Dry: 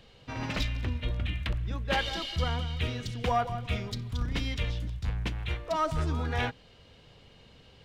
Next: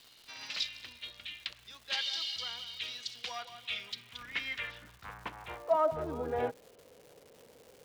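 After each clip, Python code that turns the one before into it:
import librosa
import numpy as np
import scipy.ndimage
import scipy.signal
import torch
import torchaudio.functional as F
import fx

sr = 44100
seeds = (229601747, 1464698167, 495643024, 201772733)

y = fx.filter_sweep_bandpass(x, sr, from_hz=4500.0, to_hz=490.0, start_s=3.36, end_s=6.26, q=2.1)
y = fx.dmg_crackle(y, sr, seeds[0], per_s=380.0, level_db=-52.0)
y = F.gain(torch.from_numpy(y), 5.5).numpy()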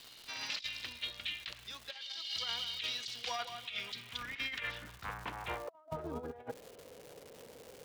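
y = fx.over_compress(x, sr, threshold_db=-40.0, ratio=-0.5)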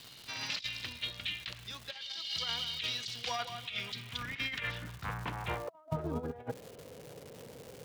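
y = fx.peak_eq(x, sr, hz=130.0, db=10.0, octaves=1.5)
y = F.gain(torch.from_numpy(y), 2.0).numpy()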